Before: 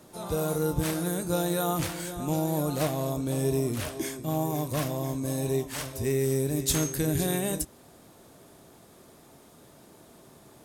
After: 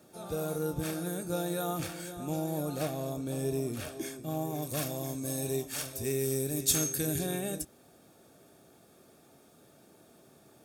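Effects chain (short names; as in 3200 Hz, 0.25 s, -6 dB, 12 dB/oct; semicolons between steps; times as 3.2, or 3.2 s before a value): 4.62–7.19 high shelf 3400 Hz +8.5 dB; requantised 12-bit, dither triangular; notch comb 1000 Hz; gain -5 dB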